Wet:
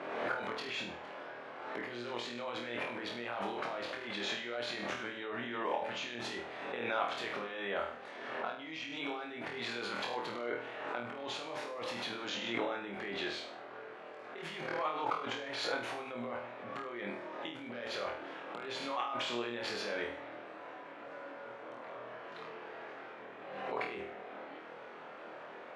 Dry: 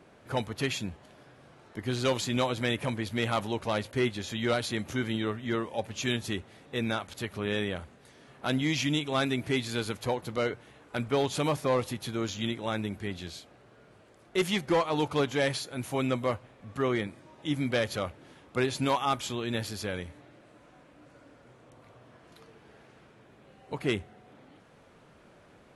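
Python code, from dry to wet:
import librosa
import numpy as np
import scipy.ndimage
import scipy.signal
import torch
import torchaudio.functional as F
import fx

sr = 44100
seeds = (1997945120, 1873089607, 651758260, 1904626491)

p1 = fx.over_compress(x, sr, threshold_db=-39.0, ratio=-1.0)
p2 = fx.bandpass_edges(p1, sr, low_hz=470.0, high_hz=2400.0)
p3 = p2 + fx.room_flutter(p2, sr, wall_m=4.3, rt60_s=0.47, dry=0)
p4 = fx.pre_swell(p3, sr, db_per_s=37.0)
y = p4 * librosa.db_to_amplitude(2.0)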